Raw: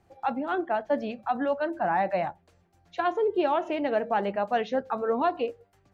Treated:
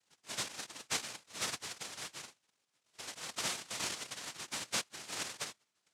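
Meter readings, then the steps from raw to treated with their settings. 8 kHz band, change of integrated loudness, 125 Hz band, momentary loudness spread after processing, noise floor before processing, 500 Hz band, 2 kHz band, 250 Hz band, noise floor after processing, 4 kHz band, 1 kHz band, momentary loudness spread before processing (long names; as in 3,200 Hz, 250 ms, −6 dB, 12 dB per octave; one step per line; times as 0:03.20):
can't be measured, −11.5 dB, −10.0 dB, 9 LU, −65 dBFS, −25.5 dB, −7.5 dB, −22.0 dB, −82 dBFS, +6.0 dB, −20.5 dB, 5 LU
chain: spectral magnitudes quantised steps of 30 dB
formant resonators in series i
cochlear-implant simulation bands 1
level −3 dB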